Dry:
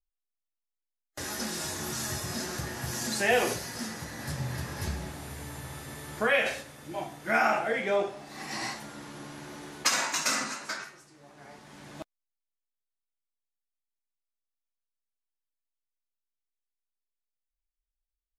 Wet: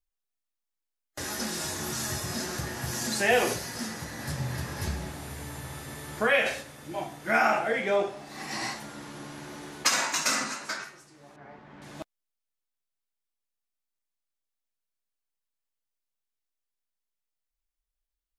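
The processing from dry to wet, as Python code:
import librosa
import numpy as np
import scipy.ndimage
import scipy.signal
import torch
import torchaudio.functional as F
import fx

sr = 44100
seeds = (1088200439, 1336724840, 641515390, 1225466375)

y = fx.lowpass(x, sr, hz=2100.0, slope=12, at=(11.36, 11.82))
y = y * 10.0 ** (1.5 / 20.0)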